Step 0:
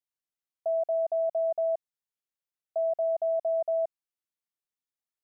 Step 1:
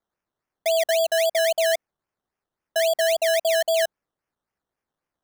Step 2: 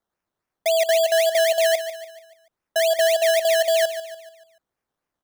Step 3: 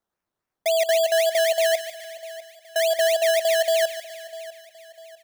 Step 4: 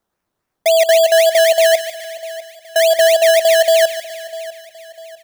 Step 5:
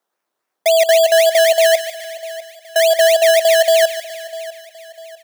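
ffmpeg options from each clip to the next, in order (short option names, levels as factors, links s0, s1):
-af "acrusher=samples=15:mix=1:aa=0.000001:lfo=1:lforange=9:lforate=3.7,volume=2.11"
-af "aecho=1:1:145|290|435|580|725:0.266|0.12|0.0539|0.0242|0.0109,volume=1.19"
-af "aecho=1:1:649|1298|1947:0.133|0.0547|0.0224,volume=0.841"
-af "lowshelf=f=470:g=3,volume=2.51"
-af "highpass=400"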